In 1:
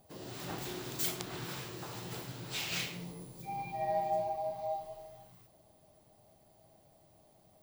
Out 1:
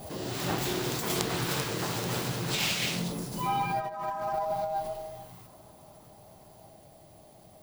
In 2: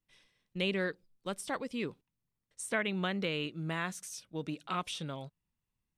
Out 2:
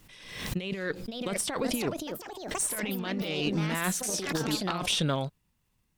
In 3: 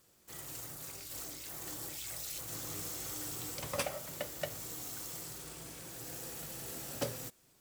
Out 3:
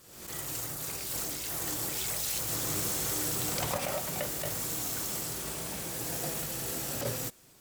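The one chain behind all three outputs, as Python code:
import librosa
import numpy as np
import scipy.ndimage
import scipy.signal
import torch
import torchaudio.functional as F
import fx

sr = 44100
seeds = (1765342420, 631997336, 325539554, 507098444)

y = fx.over_compress(x, sr, threshold_db=-38.0, ratio=-0.5)
y = fx.cheby_harmonics(y, sr, harmonics=(6,), levels_db=(-22,), full_scale_db=-13.0)
y = fx.echo_pitch(y, sr, ms=639, semitones=4, count=3, db_per_echo=-6.0)
y = fx.pre_swell(y, sr, db_per_s=61.0)
y = y * librosa.db_to_amplitude(8.0)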